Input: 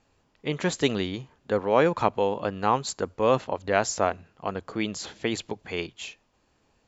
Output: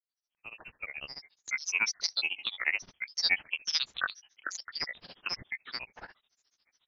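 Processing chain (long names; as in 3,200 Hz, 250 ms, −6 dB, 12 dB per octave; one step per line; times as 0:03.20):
fade in at the beginning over 2.03 s
voice inversion scrambler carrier 3,700 Hz
granular cloud 83 ms, grains 14 per second, spray 21 ms, pitch spread up and down by 12 semitones
level −4 dB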